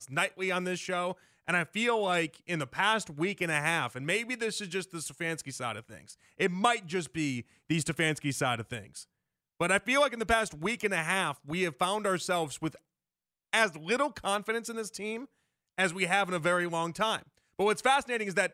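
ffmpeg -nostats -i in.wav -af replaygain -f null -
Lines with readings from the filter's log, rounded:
track_gain = +9.9 dB
track_peak = 0.188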